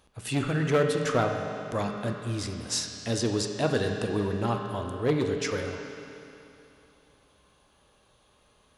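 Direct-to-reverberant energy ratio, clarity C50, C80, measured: 2.5 dB, 4.0 dB, 4.5 dB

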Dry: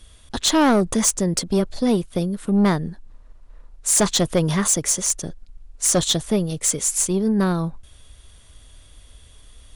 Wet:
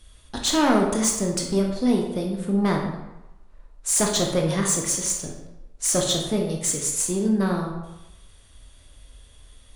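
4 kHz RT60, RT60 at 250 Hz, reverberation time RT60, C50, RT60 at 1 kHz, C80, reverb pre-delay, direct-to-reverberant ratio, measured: 0.65 s, 0.80 s, 0.95 s, 4.0 dB, 1.0 s, 6.5 dB, 17 ms, 0.5 dB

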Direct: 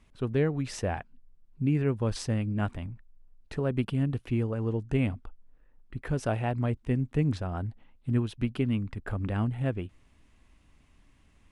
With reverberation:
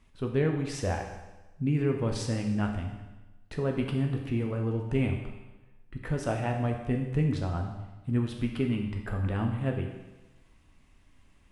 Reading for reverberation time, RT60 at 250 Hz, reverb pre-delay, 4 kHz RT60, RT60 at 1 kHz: 1.1 s, 1.1 s, 10 ms, 1.1 s, 1.1 s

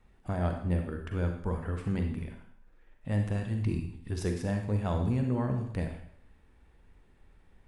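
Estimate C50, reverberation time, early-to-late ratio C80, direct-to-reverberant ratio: 5.5 dB, 0.65 s, 9.0 dB, 4.0 dB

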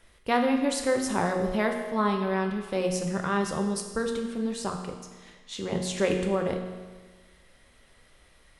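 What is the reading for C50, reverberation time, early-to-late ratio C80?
6.0 dB, 1.4 s, 7.5 dB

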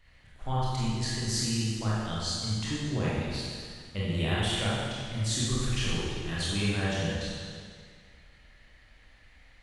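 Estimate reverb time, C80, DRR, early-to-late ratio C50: 1.9 s, −1.0 dB, −8.0 dB, −3.5 dB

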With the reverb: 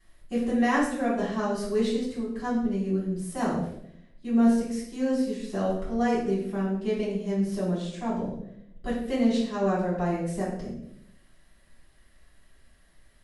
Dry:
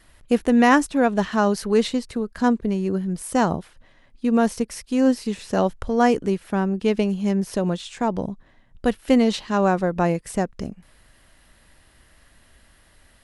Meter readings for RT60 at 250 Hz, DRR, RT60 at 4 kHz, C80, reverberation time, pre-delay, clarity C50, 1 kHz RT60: 1.0 s, −9.5 dB, 0.60 s, 6.5 dB, 0.75 s, 3 ms, 3.0 dB, 0.60 s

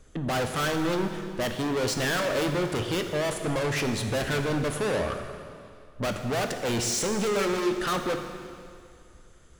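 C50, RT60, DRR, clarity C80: 6.5 dB, 2.3 s, 5.0 dB, 7.5 dB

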